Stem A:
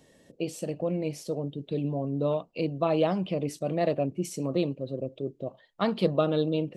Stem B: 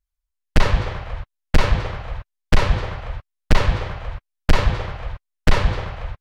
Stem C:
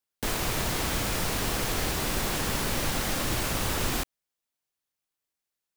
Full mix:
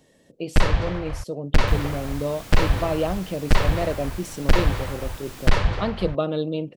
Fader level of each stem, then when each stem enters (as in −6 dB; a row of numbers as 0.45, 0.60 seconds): +0.5, −2.5, −12.0 decibels; 0.00, 0.00, 1.45 seconds